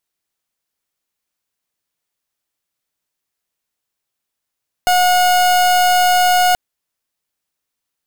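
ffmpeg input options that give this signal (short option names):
-f lavfi -i "aevalsrc='0.237*(2*lt(mod(724*t,1),0.38)-1)':d=1.68:s=44100"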